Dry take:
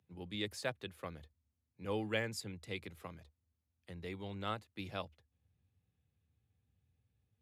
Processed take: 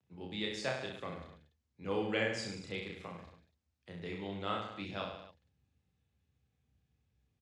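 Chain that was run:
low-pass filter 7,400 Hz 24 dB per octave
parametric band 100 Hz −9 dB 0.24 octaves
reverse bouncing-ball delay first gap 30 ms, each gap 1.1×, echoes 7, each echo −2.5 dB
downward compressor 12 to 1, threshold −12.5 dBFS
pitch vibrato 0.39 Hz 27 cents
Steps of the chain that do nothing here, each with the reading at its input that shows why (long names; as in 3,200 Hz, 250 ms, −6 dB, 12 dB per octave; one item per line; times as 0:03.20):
downward compressor, threshold −12.5 dBFS: peak of its input −20.0 dBFS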